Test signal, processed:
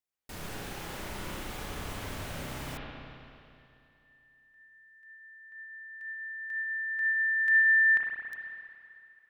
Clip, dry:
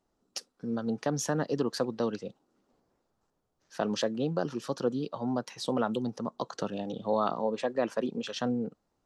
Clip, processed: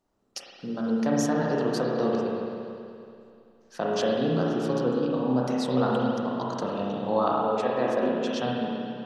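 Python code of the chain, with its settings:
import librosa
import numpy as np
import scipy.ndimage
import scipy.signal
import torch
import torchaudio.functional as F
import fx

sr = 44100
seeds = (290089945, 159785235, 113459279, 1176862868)

y = fx.rev_spring(x, sr, rt60_s=2.6, pass_ms=(31, 55), chirp_ms=75, drr_db=-4.0)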